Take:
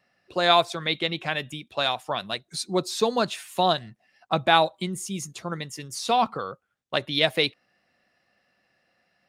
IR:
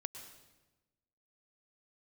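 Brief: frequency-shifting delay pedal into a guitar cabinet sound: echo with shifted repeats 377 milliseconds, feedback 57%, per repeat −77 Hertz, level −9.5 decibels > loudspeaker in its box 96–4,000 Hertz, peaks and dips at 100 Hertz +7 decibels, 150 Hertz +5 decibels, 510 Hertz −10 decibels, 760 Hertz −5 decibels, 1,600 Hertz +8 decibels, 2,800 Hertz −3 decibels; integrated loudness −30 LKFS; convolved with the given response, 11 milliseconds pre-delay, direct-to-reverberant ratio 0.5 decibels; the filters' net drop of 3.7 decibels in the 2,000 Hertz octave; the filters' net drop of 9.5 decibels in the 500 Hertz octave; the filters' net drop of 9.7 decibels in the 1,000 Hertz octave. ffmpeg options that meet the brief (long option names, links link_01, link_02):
-filter_complex "[0:a]equalizer=frequency=500:width_type=o:gain=-3.5,equalizer=frequency=1000:width_type=o:gain=-6.5,equalizer=frequency=2000:width_type=o:gain=-7.5,asplit=2[link_01][link_02];[1:a]atrim=start_sample=2205,adelay=11[link_03];[link_02][link_03]afir=irnorm=-1:irlink=0,volume=1.5dB[link_04];[link_01][link_04]amix=inputs=2:normalize=0,asplit=8[link_05][link_06][link_07][link_08][link_09][link_10][link_11][link_12];[link_06]adelay=377,afreqshift=-77,volume=-9.5dB[link_13];[link_07]adelay=754,afreqshift=-154,volume=-14.4dB[link_14];[link_08]adelay=1131,afreqshift=-231,volume=-19.3dB[link_15];[link_09]adelay=1508,afreqshift=-308,volume=-24.1dB[link_16];[link_10]adelay=1885,afreqshift=-385,volume=-29dB[link_17];[link_11]adelay=2262,afreqshift=-462,volume=-33.9dB[link_18];[link_12]adelay=2639,afreqshift=-539,volume=-38.8dB[link_19];[link_05][link_13][link_14][link_15][link_16][link_17][link_18][link_19]amix=inputs=8:normalize=0,highpass=96,equalizer=frequency=100:width_type=q:width=4:gain=7,equalizer=frequency=150:width_type=q:width=4:gain=5,equalizer=frequency=510:width_type=q:width=4:gain=-10,equalizer=frequency=760:width_type=q:width=4:gain=-5,equalizer=frequency=1600:width_type=q:width=4:gain=8,equalizer=frequency=2800:width_type=q:width=4:gain=-3,lowpass=frequency=4000:width=0.5412,lowpass=frequency=4000:width=1.3066,volume=-2dB"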